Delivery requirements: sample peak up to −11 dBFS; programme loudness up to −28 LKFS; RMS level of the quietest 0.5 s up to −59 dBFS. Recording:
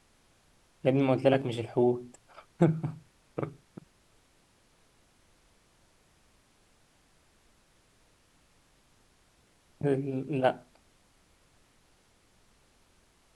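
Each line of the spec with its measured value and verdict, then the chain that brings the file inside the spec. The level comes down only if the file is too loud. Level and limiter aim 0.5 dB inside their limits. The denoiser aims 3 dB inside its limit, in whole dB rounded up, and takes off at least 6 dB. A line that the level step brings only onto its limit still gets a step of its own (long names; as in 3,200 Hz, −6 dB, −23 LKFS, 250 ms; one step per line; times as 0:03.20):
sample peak −9.5 dBFS: out of spec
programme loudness −29.5 LKFS: in spec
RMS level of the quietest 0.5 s −66 dBFS: in spec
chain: brickwall limiter −11.5 dBFS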